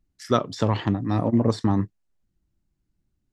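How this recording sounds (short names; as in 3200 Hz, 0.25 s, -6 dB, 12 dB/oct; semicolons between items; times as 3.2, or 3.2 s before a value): noise floor -76 dBFS; spectral tilt -7.5 dB/oct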